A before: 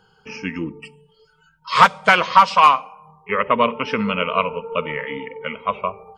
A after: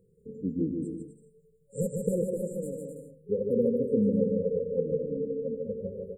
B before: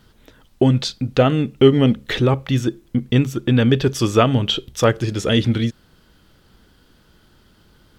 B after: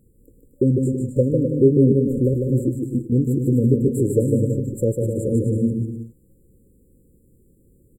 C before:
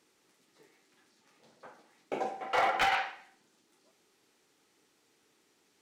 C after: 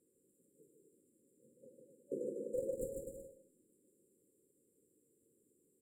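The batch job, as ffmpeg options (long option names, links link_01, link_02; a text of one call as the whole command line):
ffmpeg -i in.wav -af "afftfilt=real='re*(1-between(b*sr/4096,560,7100))':imag='im*(1-between(b*sr/4096,560,7100))':win_size=4096:overlap=0.75,aecho=1:1:150|255|328.5|380|416:0.631|0.398|0.251|0.158|0.1,volume=-3dB" out.wav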